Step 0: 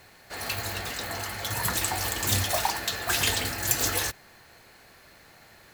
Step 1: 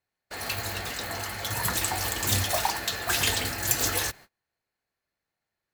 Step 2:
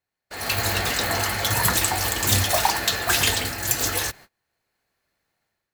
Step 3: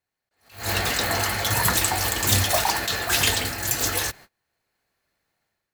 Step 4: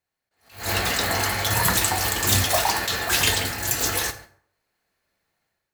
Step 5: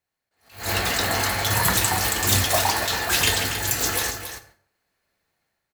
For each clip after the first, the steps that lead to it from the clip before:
noise gate −46 dBFS, range −33 dB
automatic gain control gain up to 11 dB; level −1 dB
level that may rise only so fast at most 150 dB per second
dense smooth reverb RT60 0.59 s, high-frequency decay 0.65×, DRR 7.5 dB
single-tap delay 278 ms −10 dB

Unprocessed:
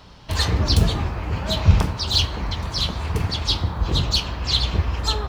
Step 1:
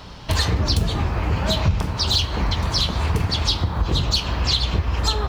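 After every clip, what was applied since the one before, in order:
downward compressor 5 to 1, threshold −24 dBFS, peak gain reduction 15 dB
level +7 dB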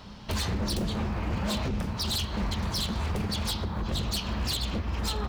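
parametric band 210 Hz +14.5 dB 0.22 octaves
wave folding −15.5 dBFS
level −8 dB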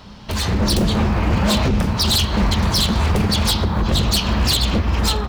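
automatic gain control gain up to 7.5 dB
level +5 dB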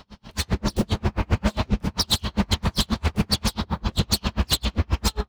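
tremolo with a sine in dB 7.5 Hz, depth 38 dB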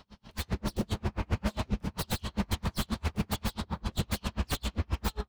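stylus tracing distortion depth 0.33 ms
slew-rate limiting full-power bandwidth 460 Hz
level −8.5 dB

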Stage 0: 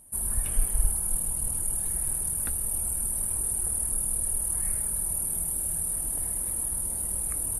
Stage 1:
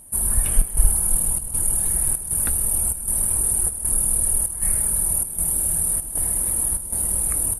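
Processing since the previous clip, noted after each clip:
square-wave tremolo 1.3 Hz, depth 65%, duty 80%
level +8 dB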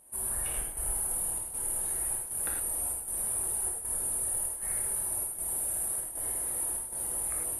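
bass and treble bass −14 dB, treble −6 dB
reverb whose tail is shaped and stops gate 130 ms flat, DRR −1.5 dB
level −8.5 dB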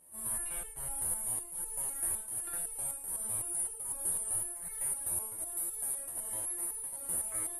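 step-sequenced resonator 7.9 Hz 86–440 Hz
level +7.5 dB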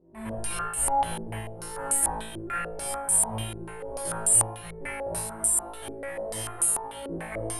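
on a send: flutter between parallel walls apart 3.1 metres, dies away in 0.85 s
on the sum: low-pass on a step sequencer 6.8 Hz 370–7,900 Hz
level +8 dB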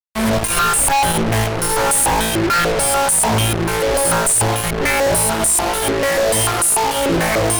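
fuzz pedal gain 48 dB, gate −41 dBFS

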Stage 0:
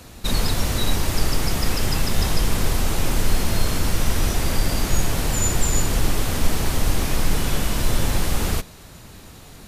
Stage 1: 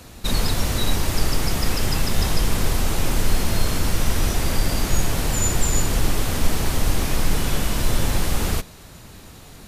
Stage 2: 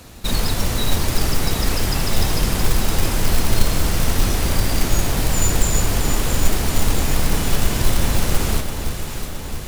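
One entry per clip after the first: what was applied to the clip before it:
no processing that can be heard
delay that swaps between a low-pass and a high-pass 335 ms, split 1,000 Hz, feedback 79%, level −6 dB; floating-point word with a short mantissa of 2 bits; level +1 dB

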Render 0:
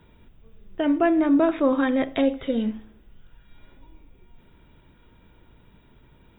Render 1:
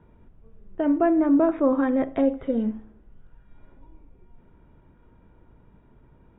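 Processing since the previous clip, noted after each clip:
low-pass filter 1,300 Hz 12 dB per octave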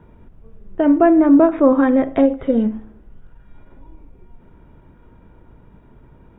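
every ending faded ahead of time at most 220 dB per second
level +8 dB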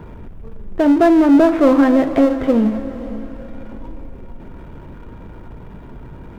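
power curve on the samples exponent 0.7
feedback delay with all-pass diffusion 518 ms, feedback 42%, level −14 dB
level −1.5 dB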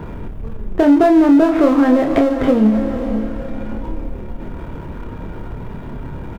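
downward compressor 6 to 1, threshold −17 dBFS, peak gain reduction 9.5 dB
double-tracking delay 28 ms −5.5 dB
level +6 dB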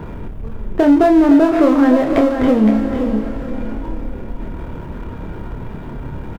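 single-tap delay 515 ms −8.5 dB

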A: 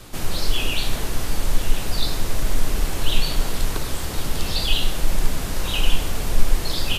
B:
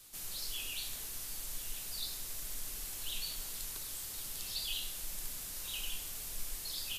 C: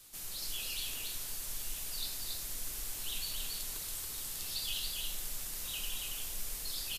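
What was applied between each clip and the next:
first-order pre-emphasis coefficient 0.9; level −8 dB
single-tap delay 279 ms −3 dB

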